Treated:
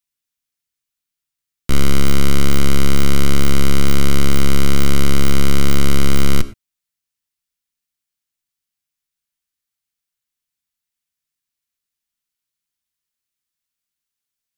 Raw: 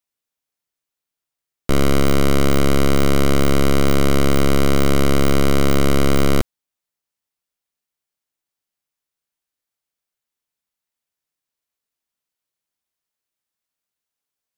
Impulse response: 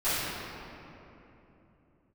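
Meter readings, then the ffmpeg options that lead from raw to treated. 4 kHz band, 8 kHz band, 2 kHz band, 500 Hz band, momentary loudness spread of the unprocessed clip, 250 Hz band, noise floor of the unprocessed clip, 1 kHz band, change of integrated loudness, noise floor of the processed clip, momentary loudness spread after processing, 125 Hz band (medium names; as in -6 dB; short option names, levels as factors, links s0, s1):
+2.0 dB, +2.5 dB, -0.5 dB, -6.5 dB, 2 LU, -1.5 dB, under -85 dBFS, -3.5 dB, -1.0 dB, -84 dBFS, 2 LU, +1.0 dB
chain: -filter_complex "[0:a]equalizer=f=590:w=0.68:g=-12,asplit=2[s0][s1];[1:a]atrim=start_sample=2205,atrim=end_sample=3528,asetrate=28224,aresample=44100[s2];[s1][s2]afir=irnorm=-1:irlink=0,volume=0.0562[s3];[s0][s3]amix=inputs=2:normalize=0,volume=1.26"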